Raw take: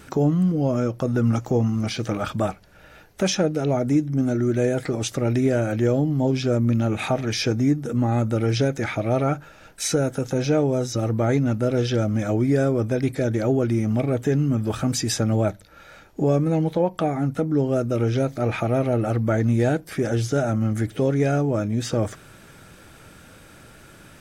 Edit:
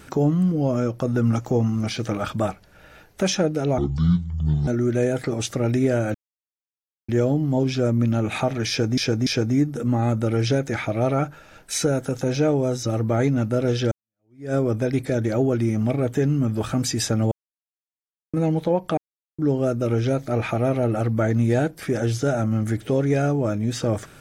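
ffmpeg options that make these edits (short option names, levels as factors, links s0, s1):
-filter_complex "[0:a]asplit=11[s0][s1][s2][s3][s4][s5][s6][s7][s8][s9][s10];[s0]atrim=end=3.784[s11];[s1]atrim=start=3.78:end=4.29,asetpts=PTS-STARTPTS,asetrate=25137,aresample=44100[s12];[s2]atrim=start=4.286:end=5.76,asetpts=PTS-STARTPTS,afade=t=out:st=1.47:d=0.004:c=hsin,apad=pad_dur=0.94[s13];[s3]atrim=start=5.76:end=7.652,asetpts=PTS-STARTPTS,afade=t=in:d=0.004:c=hsin[s14];[s4]atrim=start=7.358:end=7.652[s15];[s5]atrim=start=7.358:end=12.01,asetpts=PTS-STARTPTS,afade=t=out:st=4.648:d=0.004:c=hsin[s16];[s6]atrim=start=12.01:end=15.41,asetpts=PTS-STARTPTS,afade=t=in:d=0.63:c=exp,afade=t=out:st=3.396:d=0.004:c=hsin[s17];[s7]atrim=start=15.41:end=16.43,asetpts=PTS-STARTPTS,volume=0[s18];[s8]atrim=start=16.43:end=17.07,asetpts=PTS-STARTPTS,afade=t=in:d=0.004:c=hsin,afade=t=out:st=0.636:d=0.004:c=hsin[s19];[s9]atrim=start=17.07:end=17.48,asetpts=PTS-STARTPTS,volume=0[s20];[s10]atrim=start=17.48,asetpts=PTS-STARTPTS,afade=t=in:d=0.004:c=hsin[s21];[s11][s12]acrossfade=d=0.004:c1=hsin:c2=hsin[s22];[s13][s14]concat=n=2:v=0:a=1[s23];[s22][s23]acrossfade=d=0.004:c1=hsin:c2=hsin[s24];[s24][s15]acrossfade=d=0.004:c1=hsin:c2=hsin[s25];[s16][s17][s18][s19][s20][s21]concat=n=6:v=0:a=1[s26];[s25][s26]acrossfade=d=0.004:c1=hsin:c2=hsin"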